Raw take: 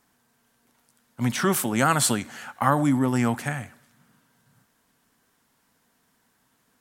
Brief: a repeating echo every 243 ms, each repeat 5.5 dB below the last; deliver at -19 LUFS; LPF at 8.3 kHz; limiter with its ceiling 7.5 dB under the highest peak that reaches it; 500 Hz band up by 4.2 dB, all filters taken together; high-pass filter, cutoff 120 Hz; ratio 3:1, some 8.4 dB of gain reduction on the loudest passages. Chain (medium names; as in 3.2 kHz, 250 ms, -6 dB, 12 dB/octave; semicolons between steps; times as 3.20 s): high-pass 120 Hz; low-pass 8.3 kHz; peaking EQ 500 Hz +5.5 dB; compression 3:1, threshold -25 dBFS; peak limiter -19 dBFS; feedback delay 243 ms, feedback 53%, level -5.5 dB; trim +10.5 dB